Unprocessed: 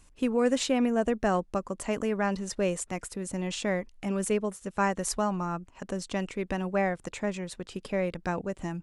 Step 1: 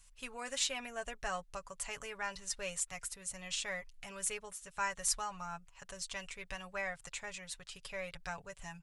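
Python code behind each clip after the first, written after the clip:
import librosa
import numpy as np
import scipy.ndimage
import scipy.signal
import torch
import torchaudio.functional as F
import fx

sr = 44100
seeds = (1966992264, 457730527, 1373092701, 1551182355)

y = fx.tone_stack(x, sr, knobs='10-0-10')
y = y + 0.6 * np.pad(y, (int(7.1 * sr / 1000.0), 0))[:len(y)]
y = y * librosa.db_to_amplitude(-1.0)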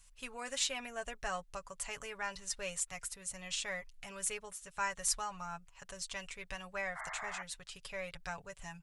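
y = fx.spec_paint(x, sr, seeds[0], shape='noise', start_s=6.95, length_s=0.48, low_hz=620.0, high_hz=2200.0, level_db=-44.0)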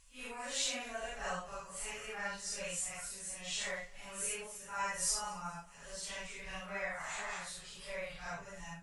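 y = fx.phase_scramble(x, sr, seeds[1], window_ms=200)
y = fx.echo_feedback(y, sr, ms=218, feedback_pct=51, wet_db=-22.5)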